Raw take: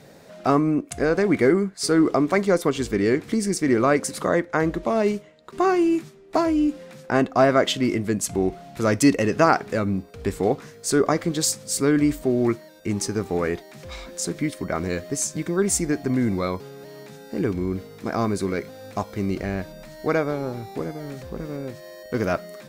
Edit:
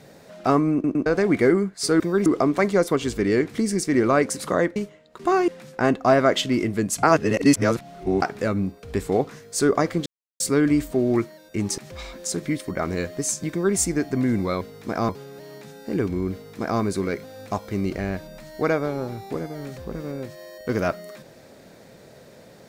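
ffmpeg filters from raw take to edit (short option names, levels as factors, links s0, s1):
-filter_complex "[0:a]asplit=15[s0][s1][s2][s3][s4][s5][s6][s7][s8][s9][s10][s11][s12][s13][s14];[s0]atrim=end=0.842[s15];[s1]atrim=start=0.728:end=0.842[s16];[s2]atrim=start=0.728:end=0.842[s17];[s3]atrim=start=1.058:end=2.002[s18];[s4]atrim=start=15.438:end=15.702[s19];[s5]atrim=start=1.998:end=4.502[s20];[s6]atrim=start=5.088:end=5.812[s21];[s7]atrim=start=6.788:end=8.342[s22];[s8]atrim=start=8.338:end=9.532,asetpts=PTS-STARTPTS,areverse[s23];[s9]atrim=start=9.528:end=11.37,asetpts=PTS-STARTPTS,afade=t=out:st=1.838:d=0.004:c=hsin[s24];[s10]atrim=start=11.37:end=11.71,asetpts=PTS-STARTPTS,volume=0[s25];[s11]atrim=start=11.71:end=13.092,asetpts=PTS-STARTPTS,afade=t=in:d=0.004:c=hsin[s26];[s12]atrim=start=13.708:end=16.542[s27];[s13]atrim=start=17.778:end=18.262[s28];[s14]atrim=start=16.538[s29];[s15][s16]acrossfade=d=0.004:c1=hsin:c2=hsin[s30];[s30][s17]acrossfade=d=0.004:c1=hsin:c2=hsin[s31];[s31][s18]acrossfade=d=0.004:c1=hsin:c2=hsin[s32];[s32][s19]acrossfade=d=0.004:c1=hsin:c2=hsin[s33];[s33][s20]acrossfade=d=0.004:c1=hsin:c2=hsin[s34];[s34][s21]acrossfade=d=0.004:c1=hsin:c2=hsin[s35];[s35][s22]acrossfade=d=0.004:c1=hsin:c2=hsin[s36];[s36][s23]acrossfade=d=0.004:c1=hsin:c2=hsin[s37];[s24][s25][s26]concat=n=3:v=0:a=1[s38];[s37][s38]acrossfade=d=0.004:c1=hsin:c2=hsin[s39];[s39][s27]acrossfade=d=0.004:c1=hsin:c2=hsin[s40];[s40][s28]acrossfade=d=0.004:c1=hsin:c2=hsin[s41];[s41][s29]acrossfade=d=0.004:c1=hsin:c2=hsin"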